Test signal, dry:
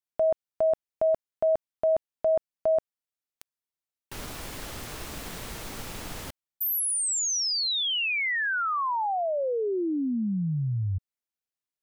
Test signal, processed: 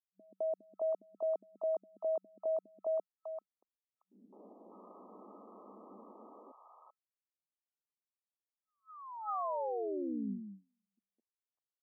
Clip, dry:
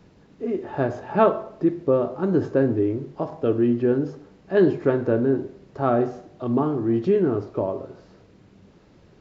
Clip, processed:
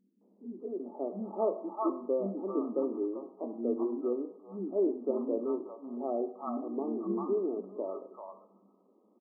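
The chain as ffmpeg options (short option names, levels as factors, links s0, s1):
-filter_complex "[0:a]afftfilt=real='re*between(b*sr/4096,190,1300)':imag='im*between(b*sr/4096,190,1300)':win_size=4096:overlap=0.75,acrossover=split=260|800[s0][s1][s2];[s1]adelay=210[s3];[s2]adelay=600[s4];[s0][s3][s4]amix=inputs=3:normalize=0,volume=0.376"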